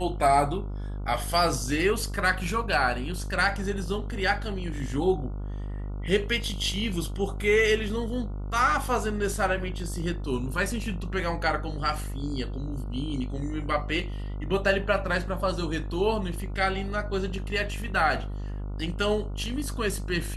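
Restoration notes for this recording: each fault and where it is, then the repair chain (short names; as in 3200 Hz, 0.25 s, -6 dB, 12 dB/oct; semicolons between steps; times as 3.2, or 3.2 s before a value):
buzz 50 Hz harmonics 29 -33 dBFS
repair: de-hum 50 Hz, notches 29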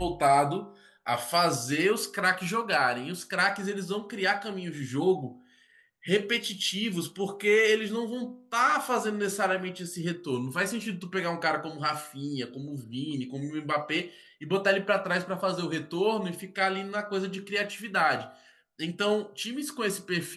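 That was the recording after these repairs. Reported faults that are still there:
none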